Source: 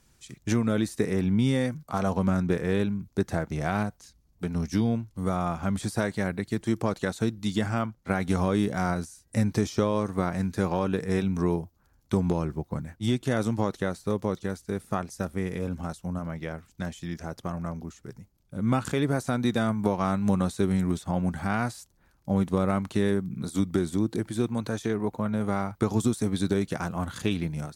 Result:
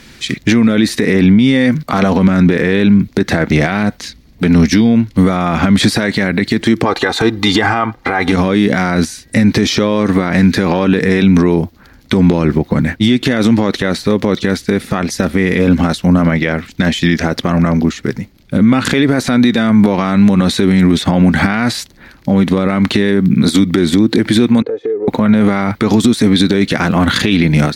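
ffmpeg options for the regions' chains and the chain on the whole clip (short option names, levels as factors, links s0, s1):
-filter_complex "[0:a]asettb=1/sr,asplit=3[s0][s1][s2];[s0]atrim=end=6.854[s3];[s1]atrim=start=6.85:end=8.32,asetpts=PTS-STARTPTS,afade=t=in:d=0.004:c=qsin,afade=t=out:st=1.466:d=0.004:c=qsin,equalizer=f=920:t=o:w=1.4:g=14,aecho=1:1:2.5:0.53,atrim=end_sample=64827[s4];[s2]atrim=start=8.316[s5];[s3][s4]acrossfade=d=0.004:c1=hsin:c2=qsin[s6];[s6][s5]acrossfade=d=0.004:c1=qsin:c2=hsin,asettb=1/sr,asplit=3[s7][s8][s9];[s7]atrim=end=24.624[s10];[s8]atrim=start=24.62:end=25.08,asetpts=PTS-STARTPTS,afade=t=in:d=0.004:c=qsin,afade=t=out:st=0.456:d=0.004:c=qsin,bandpass=f=470:t=q:w=5.2,acompressor=threshold=0.00631:ratio=5:attack=3.2:release=140:knee=1:detection=peak,aecho=1:1:2.4:0.57,atrim=end_sample=20286[s11];[s9]atrim=start=25.076[s12];[s10][s11]acrossfade=d=0.004:c1=hsin:c2=qsin[s13];[s13][s12]acrossfade=d=0.004:c1=qsin:c2=hsin,equalizer=f=250:t=o:w=1:g=10,equalizer=f=500:t=o:w=1:g=4,equalizer=f=2000:t=o:w=1:g=12,equalizer=f=4000:t=o:w=1:g=10,equalizer=f=8000:t=o:w=1:g=-4,acompressor=threshold=0.126:ratio=6,alimiter=level_in=9.44:limit=0.891:release=50:level=0:latency=1,volume=0.891"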